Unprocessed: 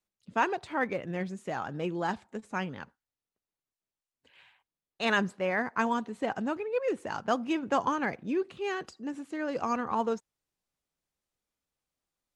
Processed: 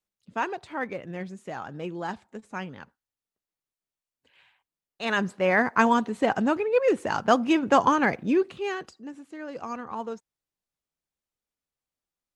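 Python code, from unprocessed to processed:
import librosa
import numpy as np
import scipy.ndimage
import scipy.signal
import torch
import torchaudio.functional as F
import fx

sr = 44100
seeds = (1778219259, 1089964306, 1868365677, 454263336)

y = fx.gain(x, sr, db=fx.line((5.03, -1.5), (5.52, 8.0), (8.32, 8.0), (9.16, -4.5)))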